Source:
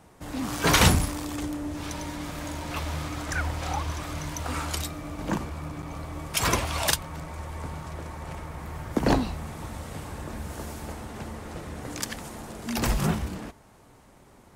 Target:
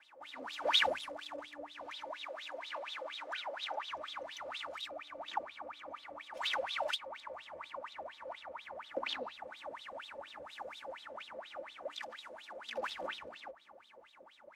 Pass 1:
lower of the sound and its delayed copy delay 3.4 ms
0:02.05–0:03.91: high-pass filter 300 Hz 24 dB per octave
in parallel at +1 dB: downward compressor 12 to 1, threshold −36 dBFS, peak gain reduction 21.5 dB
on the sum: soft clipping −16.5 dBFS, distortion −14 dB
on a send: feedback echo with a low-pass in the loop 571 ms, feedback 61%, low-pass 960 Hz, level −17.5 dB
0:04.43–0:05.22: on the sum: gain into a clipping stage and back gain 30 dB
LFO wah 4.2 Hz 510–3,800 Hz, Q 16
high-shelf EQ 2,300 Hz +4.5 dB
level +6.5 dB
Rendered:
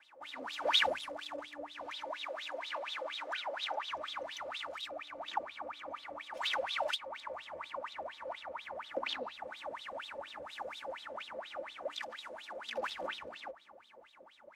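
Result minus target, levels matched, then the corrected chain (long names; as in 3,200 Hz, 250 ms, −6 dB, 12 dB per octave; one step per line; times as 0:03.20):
downward compressor: peak gain reduction −10 dB
lower of the sound and its delayed copy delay 3.4 ms
0:02.05–0:03.91: high-pass filter 300 Hz 24 dB per octave
in parallel at +1 dB: downward compressor 12 to 1, threshold −47 dBFS, peak gain reduction 31.5 dB
on the sum: soft clipping −16.5 dBFS, distortion −14 dB
on a send: feedback echo with a low-pass in the loop 571 ms, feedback 61%, low-pass 960 Hz, level −17.5 dB
0:04.43–0:05.22: on the sum: gain into a clipping stage and back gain 30 dB
LFO wah 4.2 Hz 510–3,800 Hz, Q 16
high-shelf EQ 2,300 Hz +4.5 dB
level +6.5 dB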